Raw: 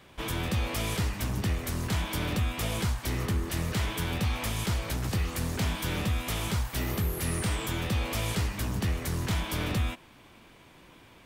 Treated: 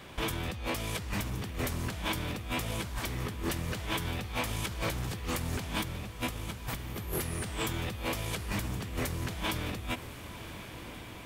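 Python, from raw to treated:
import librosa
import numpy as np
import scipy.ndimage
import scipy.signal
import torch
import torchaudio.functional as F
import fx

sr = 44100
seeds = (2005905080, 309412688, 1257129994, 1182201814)

y = fx.low_shelf(x, sr, hz=210.0, db=7.5, at=(5.76, 6.97))
y = fx.over_compress(y, sr, threshold_db=-36.0, ratio=-1.0)
y = fx.echo_diffused(y, sr, ms=1089, feedback_pct=57, wet_db=-12.5)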